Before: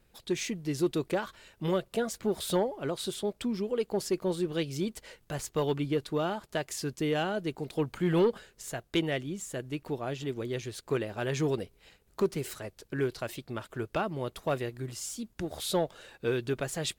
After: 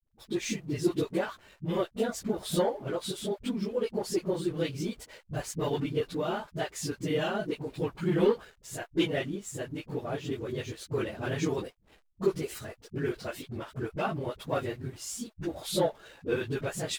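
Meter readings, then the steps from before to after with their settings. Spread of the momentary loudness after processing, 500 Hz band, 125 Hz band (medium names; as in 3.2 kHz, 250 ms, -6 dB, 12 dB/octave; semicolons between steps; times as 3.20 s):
9 LU, 0.0 dB, 0.0 dB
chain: phase randomisation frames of 50 ms; hysteresis with a dead band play -51 dBFS; phase dispersion highs, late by 54 ms, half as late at 330 Hz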